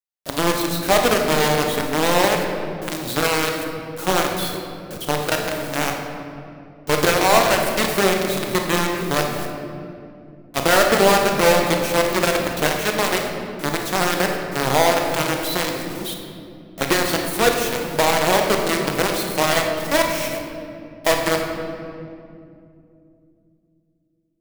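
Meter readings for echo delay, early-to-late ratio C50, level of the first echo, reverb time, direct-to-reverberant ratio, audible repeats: none, 3.5 dB, none, 2.5 s, 2.0 dB, none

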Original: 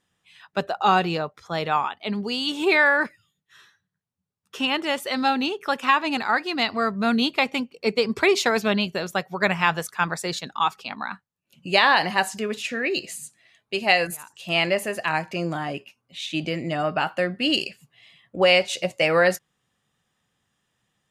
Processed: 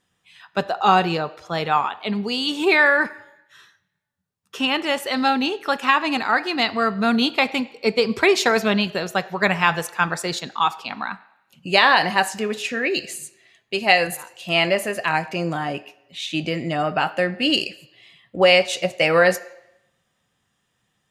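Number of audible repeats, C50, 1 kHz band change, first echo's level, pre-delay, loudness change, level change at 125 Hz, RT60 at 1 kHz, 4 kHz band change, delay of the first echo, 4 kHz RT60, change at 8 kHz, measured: none, 18.0 dB, +3.0 dB, none, 3 ms, +2.5 dB, +2.5 dB, 0.85 s, +2.5 dB, none, 0.85 s, +2.5 dB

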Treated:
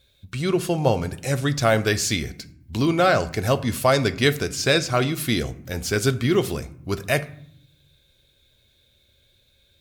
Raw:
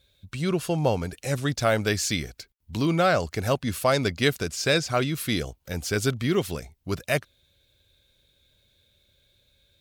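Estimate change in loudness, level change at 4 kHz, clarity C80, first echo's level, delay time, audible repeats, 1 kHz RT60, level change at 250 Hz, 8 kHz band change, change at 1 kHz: +3.5 dB, +3.5 dB, 20.0 dB, none, none, none, 0.65 s, +3.5 dB, +3.5 dB, +3.5 dB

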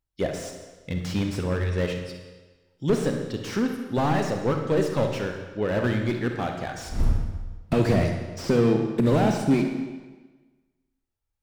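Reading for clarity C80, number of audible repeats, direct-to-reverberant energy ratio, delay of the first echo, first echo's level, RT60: 7.0 dB, none, 3.5 dB, none, none, 1.3 s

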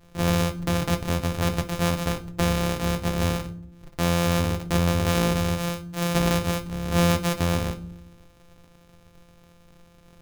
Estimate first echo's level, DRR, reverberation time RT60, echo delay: none, 5.5 dB, 0.65 s, none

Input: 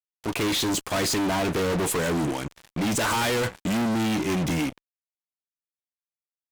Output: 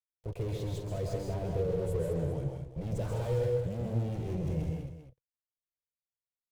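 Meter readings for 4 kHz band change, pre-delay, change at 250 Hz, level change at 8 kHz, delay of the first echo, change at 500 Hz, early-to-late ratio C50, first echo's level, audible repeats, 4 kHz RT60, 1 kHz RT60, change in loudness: -24.5 dB, none, -13.0 dB, -24.5 dB, 0.134 s, -5.0 dB, none, -4.5 dB, 4, none, none, -9.0 dB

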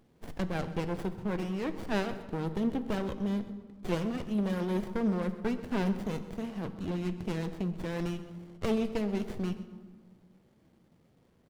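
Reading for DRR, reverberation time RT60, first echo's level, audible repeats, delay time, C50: 10.0 dB, 1.6 s, -16.5 dB, 2, 0.129 s, 11.5 dB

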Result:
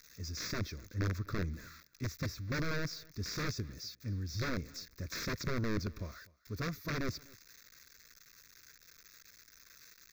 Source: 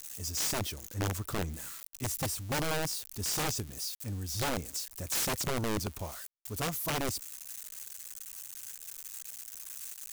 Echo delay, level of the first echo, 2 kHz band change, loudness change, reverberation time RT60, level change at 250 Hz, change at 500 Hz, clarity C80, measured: 0.249 s, -24.0 dB, -2.0 dB, -4.0 dB, none, -1.0 dB, -5.0 dB, none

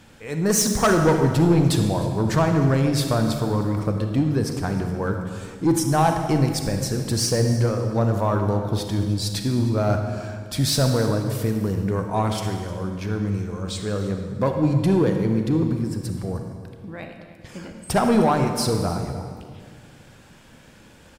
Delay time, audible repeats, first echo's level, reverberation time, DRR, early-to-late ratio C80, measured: 0.306 s, 1, -17.5 dB, 1.9 s, 4.5 dB, 6.5 dB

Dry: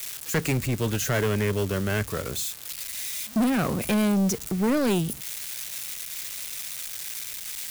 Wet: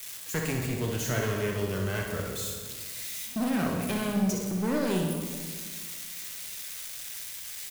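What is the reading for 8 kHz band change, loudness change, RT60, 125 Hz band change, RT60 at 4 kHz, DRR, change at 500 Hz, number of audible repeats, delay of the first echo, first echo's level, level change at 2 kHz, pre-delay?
-4.5 dB, -4.5 dB, 1.7 s, -4.0 dB, 1.3 s, 0.0 dB, -4.0 dB, 1, 62 ms, -6.0 dB, -4.0 dB, 9 ms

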